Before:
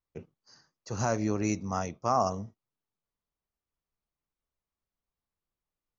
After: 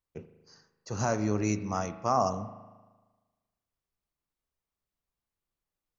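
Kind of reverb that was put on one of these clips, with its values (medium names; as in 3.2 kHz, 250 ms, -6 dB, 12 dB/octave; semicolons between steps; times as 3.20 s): spring tank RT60 1.3 s, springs 38 ms, chirp 70 ms, DRR 11 dB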